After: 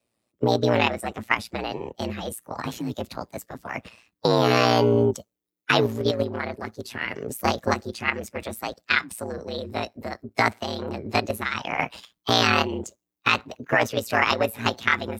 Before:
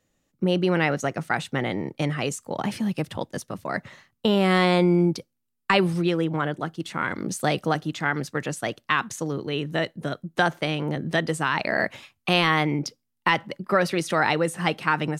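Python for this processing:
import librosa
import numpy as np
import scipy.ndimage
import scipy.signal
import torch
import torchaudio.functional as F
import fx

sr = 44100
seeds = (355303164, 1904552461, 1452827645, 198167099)

p1 = fx.spec_quant(x, sr, step_db=15)
p2 = scipy.signal.sosfilt(scipy.signal.butter(4, 120.0, 'highpass', fs=sr, output='sos'), p1)
p3 = fx.level_steps(p2, sr, step_db=23)
p4 = p2 + (p3 * librosa.db_to_amplitude(2.0))
p5 = p4 * np.sin(2.0 * np.pi * 58.0 * np.arange(len(p4)) / sr)
p6 = fx.formant_shift(p5, sr, semitones=5)
y = p6 * librosa.db_to_amplitude(-1.5)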